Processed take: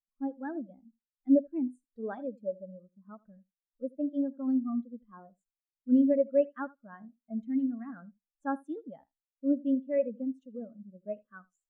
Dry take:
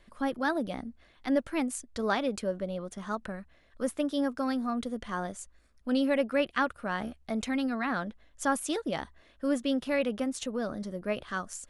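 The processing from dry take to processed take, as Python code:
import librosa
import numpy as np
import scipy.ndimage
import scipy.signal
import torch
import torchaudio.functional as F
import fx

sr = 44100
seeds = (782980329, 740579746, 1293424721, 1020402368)

y = fx.echo_feedback(x, sr, ms=80, feedback_pct=20, wet_db=-10.0)
y = fx.spectral_expand(y, sr, expansion=2.5)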